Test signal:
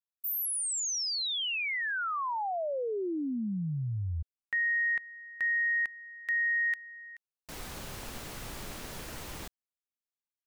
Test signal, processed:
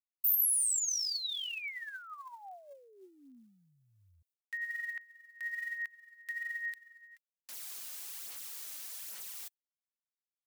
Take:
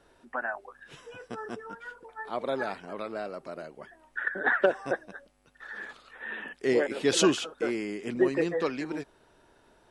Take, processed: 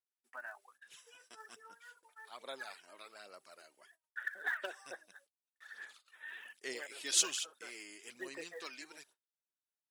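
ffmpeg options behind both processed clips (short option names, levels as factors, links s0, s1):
-af "agate=range=0.0224:threshold=0.00316:ratio=3:release=100:detection=rms,aphaser=in_gain=1:out_gain=1:delay=3.3:decay=0.46:speed=1.2:type=sinusoidal,aderivative"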